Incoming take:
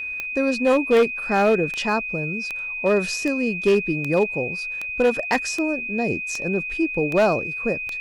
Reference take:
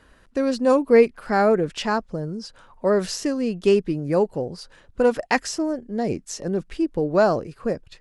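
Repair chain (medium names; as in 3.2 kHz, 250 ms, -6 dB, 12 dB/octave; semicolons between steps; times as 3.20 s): clip repair -12 dBFS; de-click; band-stop 2.5 kHz, Q 30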